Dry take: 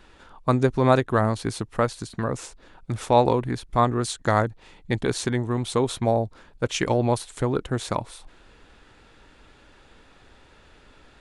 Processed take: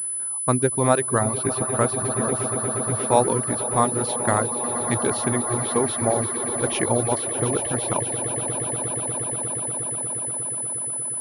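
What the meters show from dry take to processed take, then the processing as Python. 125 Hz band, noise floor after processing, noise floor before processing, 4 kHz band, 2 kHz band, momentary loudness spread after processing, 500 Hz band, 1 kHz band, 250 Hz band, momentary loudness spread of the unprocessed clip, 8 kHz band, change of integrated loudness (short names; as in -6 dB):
-1.0 dB, -28 dBFS, -54 dBFS, -2.0 dB, +0.5 dB, 5 LU, +0.5 dB, +1.0 dB, 0.0 dB, 11 LU, +17.5 dB, +2.0 dB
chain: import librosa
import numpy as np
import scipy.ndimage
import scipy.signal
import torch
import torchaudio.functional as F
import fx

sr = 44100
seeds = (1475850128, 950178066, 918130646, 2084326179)

p1 = scipy.signal.sosfilt(scipy.signal.butter(2, 80.0, 'highpass', fs=sr, output='sos'), x)
p2 = p1 + fx.echo_swell(p1, sr, ms=119, loudest=8, wet_db=-13.0, dry=0)
p3 = fx.dereverb_blind(p2, sr, rt60_s=0.86)
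p4 = fx.env_lowpass(p3, sr, base_hz=2100.0, full_db=-16.5)
y = fx.pwm(p4, sr, carrier_hz=10000.0)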